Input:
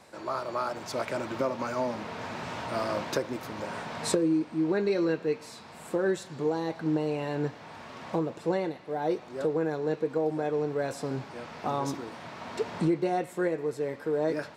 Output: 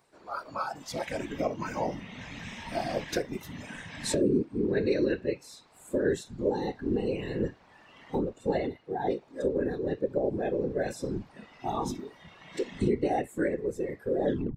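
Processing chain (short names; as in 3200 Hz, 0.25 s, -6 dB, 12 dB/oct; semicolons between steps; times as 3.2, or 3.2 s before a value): tape stop at the end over 0.31 s; whisperiser; spectral noise reduction 13 dB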